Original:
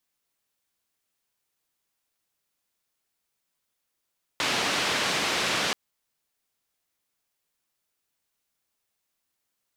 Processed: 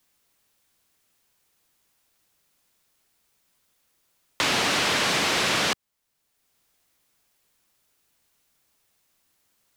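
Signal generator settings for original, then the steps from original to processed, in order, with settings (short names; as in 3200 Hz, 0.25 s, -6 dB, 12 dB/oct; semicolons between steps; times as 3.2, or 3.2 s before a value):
noise band 140–3900 Hz, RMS -26.5 dBFS 1.33 s
low shelf 230 Hz +3.5 dB; sample leveller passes 1; three-band squash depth 40%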